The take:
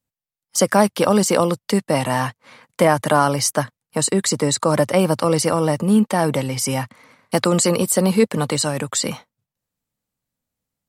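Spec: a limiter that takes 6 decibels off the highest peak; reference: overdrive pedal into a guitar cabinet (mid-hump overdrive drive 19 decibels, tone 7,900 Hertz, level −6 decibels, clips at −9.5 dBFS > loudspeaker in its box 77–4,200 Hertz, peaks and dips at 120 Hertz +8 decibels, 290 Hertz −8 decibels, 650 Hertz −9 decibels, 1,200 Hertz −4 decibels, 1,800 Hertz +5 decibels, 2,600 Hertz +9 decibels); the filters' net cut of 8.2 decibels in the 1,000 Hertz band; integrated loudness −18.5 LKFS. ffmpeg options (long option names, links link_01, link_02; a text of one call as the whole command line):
ffmpeg -i in.wav -filter_complex "[0:a]equalizer=frequency=1000:width_type=o:gain=-7,alimiter=limit=-9.5dB:level=0:latency=1,asplit=2[link_01][link_02];[link_02]highpass=frequency=720:poles=1,volume=19dB,asoftclip=type=tanh:threshold=-9.5dB[link_03];[link_01][link_03]amix=inputs=2:normalize=0,lowpass=frequency=7900:poles=1,volume=-6dB,highpass=77,equalizer=frequency=120:width_type=q:width=4:gain=8,equalizer=frequency=290:width_type=q:width=4:gain=-8,equalizer=frequency=650:width_type=q:width=4:gain=-9,equalizer=frequency=1200:width_type=q:width=4:gain=-4,equalizer=frequency=1800:width_type=q:width=4:gain=5,equalizer=frequency=2600:width_type=q:width=4:gain=9,lowpass=frequency=4200:width=0.5412,lowpass=frequency=4200:width=1.3066,volume=1dB" out.wav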